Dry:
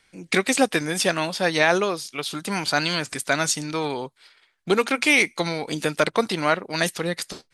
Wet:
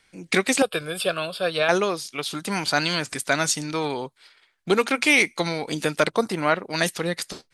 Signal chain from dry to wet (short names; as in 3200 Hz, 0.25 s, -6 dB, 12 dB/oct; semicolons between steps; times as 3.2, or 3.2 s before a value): 0.62–1.69 fixed phaser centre 1300 Hz, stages 8; 6.1–6.55 bell 1600 Hz -> 8300 Hz -11.5 dB 0.96 oct